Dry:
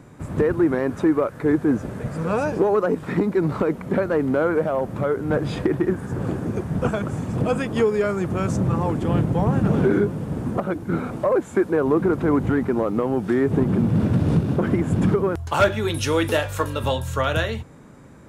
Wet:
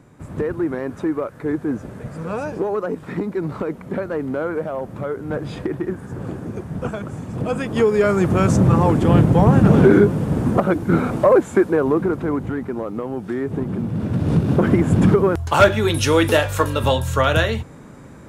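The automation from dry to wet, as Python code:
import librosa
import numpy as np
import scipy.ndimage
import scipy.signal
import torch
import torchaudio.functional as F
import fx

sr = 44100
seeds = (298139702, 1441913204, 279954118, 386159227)

y = fx.gain(x, sr, db=fx.line((7.3, -3.5), (8.19, 7.0), (11.31, 7.0), (12.5, -4.5), (13.98, -4.5), (14.55, 5.0)))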